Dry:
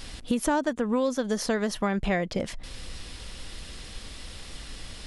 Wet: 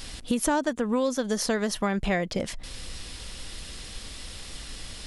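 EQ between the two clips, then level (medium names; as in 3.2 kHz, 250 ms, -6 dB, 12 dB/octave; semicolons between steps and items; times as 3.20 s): treble shelf 4.3 kHz +5.5 dB; 0.0 dB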